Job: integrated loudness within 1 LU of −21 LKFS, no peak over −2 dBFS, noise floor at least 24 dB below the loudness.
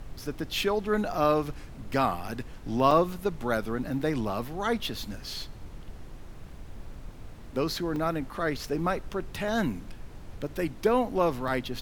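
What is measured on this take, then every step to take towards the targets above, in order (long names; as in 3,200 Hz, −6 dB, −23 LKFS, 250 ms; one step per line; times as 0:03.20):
number of dropouts 5; longest dropout 2.2 ms; background noise floor −44 dBFS; target noise floor −54 dBFS; integrated loudness −29.5 LKFS; sample peak −9.0 dBFS; target loudness −21.0 LKFS
→ repair the gap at 0:02.28/0:02.91/0:07.96/0:09.48/0:11.48, 2.2 ms
noise reduction from a noise print 10 dB
level +8.5 dB
brickwall limiter −2 dBFS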